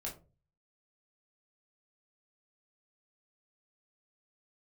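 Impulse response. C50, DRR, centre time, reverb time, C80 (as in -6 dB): 10.5 dB, -3.5 dB, 21 ms, 0.35 s, 17.0 dB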